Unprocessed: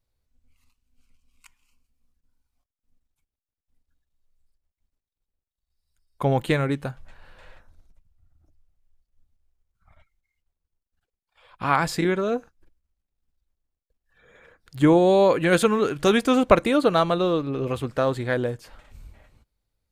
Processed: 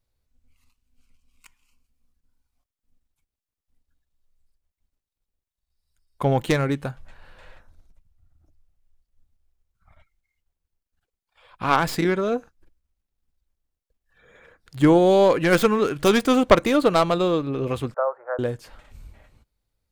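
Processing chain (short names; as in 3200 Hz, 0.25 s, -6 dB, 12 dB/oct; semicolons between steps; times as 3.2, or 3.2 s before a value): tracing distortion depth 0.12 ms; 17.94–18.39 elliptic band-pass 540–1400 Hz, stop band 50 dB; gain +1 dB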